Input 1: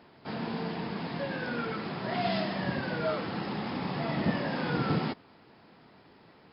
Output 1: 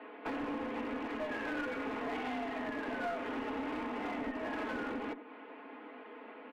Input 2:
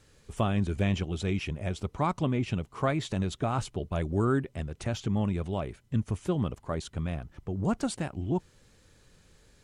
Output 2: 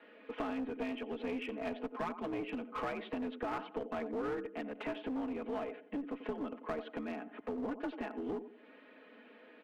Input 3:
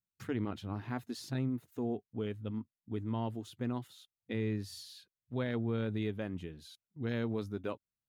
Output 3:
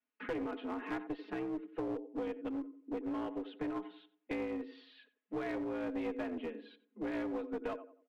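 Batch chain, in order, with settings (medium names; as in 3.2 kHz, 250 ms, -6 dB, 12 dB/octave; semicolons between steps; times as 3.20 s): comb 5 ms, depth 98%; compression 10:1, threshold -37 dBFS; mistuned SSB +61 Hz 200–2800 Hz; on a send: filtered feedback delay 91 ms, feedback 37%, low-pass 1.2 kHz, level -11.5 dB; on the sum: one-sided clip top -42 dBFS; trim +5 dB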